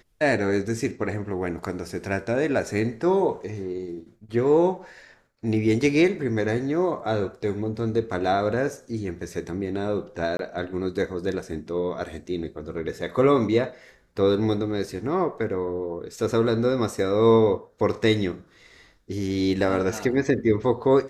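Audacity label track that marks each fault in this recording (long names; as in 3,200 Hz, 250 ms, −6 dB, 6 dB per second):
10.370000	10.390000	drop-out 22 ms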